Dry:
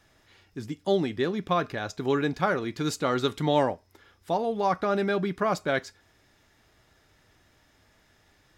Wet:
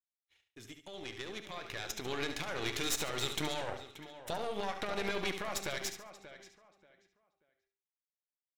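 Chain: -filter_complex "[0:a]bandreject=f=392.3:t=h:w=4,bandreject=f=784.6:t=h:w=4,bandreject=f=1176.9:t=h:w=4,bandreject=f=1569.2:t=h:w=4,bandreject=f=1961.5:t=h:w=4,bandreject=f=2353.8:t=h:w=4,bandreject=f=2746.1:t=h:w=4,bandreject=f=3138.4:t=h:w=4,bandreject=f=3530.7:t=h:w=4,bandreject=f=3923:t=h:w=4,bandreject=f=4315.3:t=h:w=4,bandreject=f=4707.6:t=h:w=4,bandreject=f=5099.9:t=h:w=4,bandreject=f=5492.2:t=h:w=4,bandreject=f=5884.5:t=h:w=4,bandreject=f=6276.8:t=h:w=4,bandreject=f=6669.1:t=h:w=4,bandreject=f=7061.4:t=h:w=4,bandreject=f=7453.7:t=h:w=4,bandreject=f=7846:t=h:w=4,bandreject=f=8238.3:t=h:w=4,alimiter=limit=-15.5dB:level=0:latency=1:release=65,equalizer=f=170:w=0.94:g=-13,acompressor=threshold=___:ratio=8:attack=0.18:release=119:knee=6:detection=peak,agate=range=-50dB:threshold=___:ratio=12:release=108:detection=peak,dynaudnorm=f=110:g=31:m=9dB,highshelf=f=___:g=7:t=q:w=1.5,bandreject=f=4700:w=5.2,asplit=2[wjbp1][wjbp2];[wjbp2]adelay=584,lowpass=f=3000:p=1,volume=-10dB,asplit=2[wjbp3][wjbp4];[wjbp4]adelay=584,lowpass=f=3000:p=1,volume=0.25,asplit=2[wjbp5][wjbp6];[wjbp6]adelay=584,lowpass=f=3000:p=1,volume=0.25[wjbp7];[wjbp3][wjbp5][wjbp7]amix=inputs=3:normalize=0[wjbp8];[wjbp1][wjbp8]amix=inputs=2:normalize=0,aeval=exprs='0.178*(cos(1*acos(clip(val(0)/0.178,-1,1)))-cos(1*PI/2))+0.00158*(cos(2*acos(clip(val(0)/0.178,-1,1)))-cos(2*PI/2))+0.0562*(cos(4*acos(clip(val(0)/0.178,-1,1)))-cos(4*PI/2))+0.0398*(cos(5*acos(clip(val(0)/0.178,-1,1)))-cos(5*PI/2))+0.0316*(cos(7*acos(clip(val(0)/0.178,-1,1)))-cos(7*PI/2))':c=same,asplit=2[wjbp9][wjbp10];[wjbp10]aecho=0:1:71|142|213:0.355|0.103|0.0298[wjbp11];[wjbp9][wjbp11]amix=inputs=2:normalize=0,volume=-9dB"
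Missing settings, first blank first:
-33dB, -57dB, 1800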